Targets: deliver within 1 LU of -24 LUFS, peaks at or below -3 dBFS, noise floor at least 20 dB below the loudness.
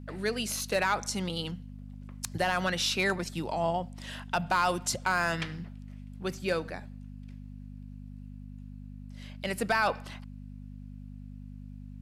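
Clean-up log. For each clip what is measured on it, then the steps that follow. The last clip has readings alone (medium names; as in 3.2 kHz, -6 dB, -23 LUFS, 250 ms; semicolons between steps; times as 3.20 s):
clipped samples 0.2%; clipping level -18.5 dBFS; hum 50 Hz; highest harmonic 250 Hz; hum level -42 dBFS; loudness -30.5 LUFS; peak level -18.5 dBFS; loudness target -24.0 LUFS
-> clip repair -18.5 dBFS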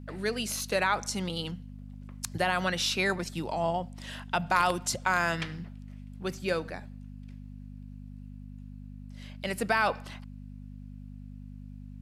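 clipped samples 0.0%; hum 50 Hz; highest harmonic 250 Hz; hum level -42 dBFS
-> de-hum 50 Hz, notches 5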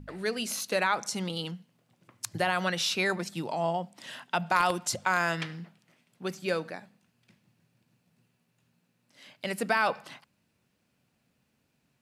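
hum not found; loudness -30.0 LUFS; peak level -9.5 dBFS; loudness target -24.0 LUFS
-> trim +6 dB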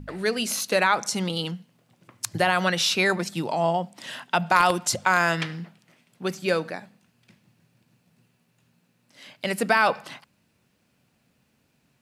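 loudness -24.0 LUFS; peak level -3.5 dBFS; noise floor -68 dBFS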